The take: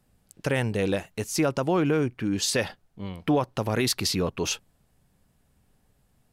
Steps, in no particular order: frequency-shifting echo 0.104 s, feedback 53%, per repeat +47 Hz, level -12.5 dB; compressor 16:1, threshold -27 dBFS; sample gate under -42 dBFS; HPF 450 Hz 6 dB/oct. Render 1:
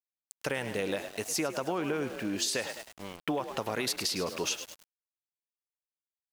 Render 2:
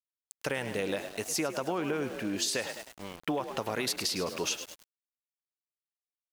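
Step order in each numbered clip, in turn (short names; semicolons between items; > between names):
HPF > frequency-shifting echo > sample gate > compressor; frequency-shifting echo > HPF > sample gate > compressor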